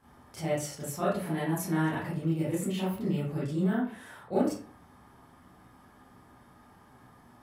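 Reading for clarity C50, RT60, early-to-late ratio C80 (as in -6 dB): 2.0 dB, 0.45 s, 8.0 dB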